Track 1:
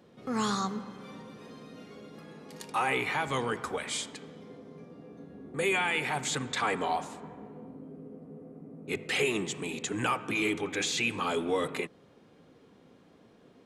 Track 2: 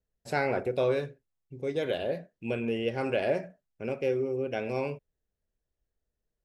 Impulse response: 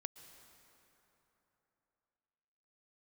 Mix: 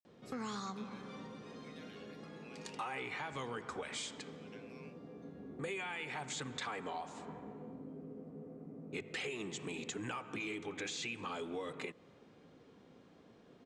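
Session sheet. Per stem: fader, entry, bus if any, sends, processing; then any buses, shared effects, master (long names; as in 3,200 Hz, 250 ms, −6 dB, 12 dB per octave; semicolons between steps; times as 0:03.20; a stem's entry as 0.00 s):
−4.0 dB, 0.05 s, send −13 dB, low-pass filter 8,200 Hz 24 dB per octave; downward compressor 6 to 1, threshold −36 dBFS, peak gain reduction 12 dB
−11.0 dB, 0.00 s, no send, high-pass filter 1,200 Hz 24 dB per octave; downward compressor, threshold −46 dBFS, peak gain reduction 15.5 dB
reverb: on, RT60 3.5 s, pre-delay 108 ms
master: no processing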